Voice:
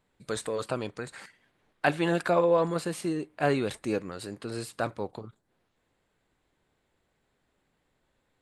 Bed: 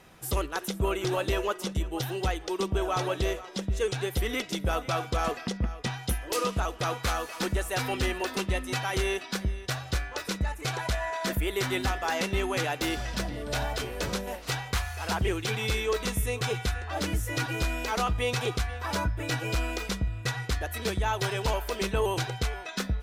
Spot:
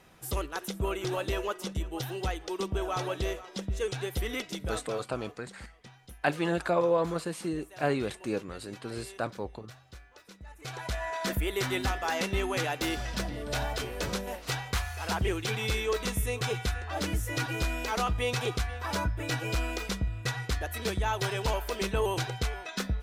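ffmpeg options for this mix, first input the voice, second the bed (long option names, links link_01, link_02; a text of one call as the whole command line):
ffmpeg -i stem1.wav -i stem2.wav -filter_complex "[0:a]adelay=4400,volume=-2.5dB[link_01];[1:a]volume=15dB,afade=type=out:start_time=4.39:duration=0.75:silence=0.149624,afade=type=in:start_time=10.43:duration=0.74:silence=0.11885[link_02];[link_01][link_02]amix=inputs=2:normalize=0" out.wav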